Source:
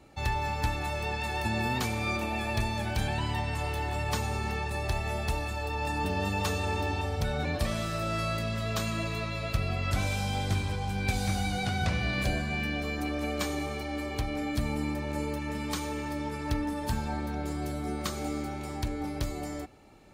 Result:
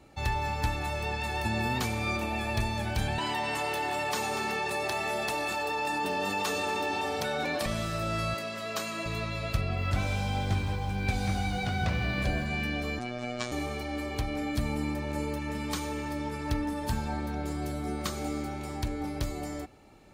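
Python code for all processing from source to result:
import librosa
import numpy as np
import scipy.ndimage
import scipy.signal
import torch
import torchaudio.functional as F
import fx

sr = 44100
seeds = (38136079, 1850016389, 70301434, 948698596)

y = fx.chain(x, sr, fx.highpass(hz=290.0, slope=12),
    fx.echo_single(ms=239, db=-15.0),
    fx.env_flatten(amount_pct=70), at=(3.18, 7.66))
y = fx.chain(y, sr, fx.highpass(hz=300.0, slope=12),
    fx.notch(hz=3500.0, q=13.0), at=(8.34, 9.06))
y = fx.chain(y, sr, fx.high_shelf(hz=6000.0, db=-10.0),
    fx.echo_crushed(ms=162, feedback_pct=55, bits=8, wet_db=-13.5), at=(9.61, 12.46))
y = fx.chain(y, sr, fx.lowpass(hz=8000.0, slope=24),
    fx.robotise(hz=122.0), at=(12.99, 13.52))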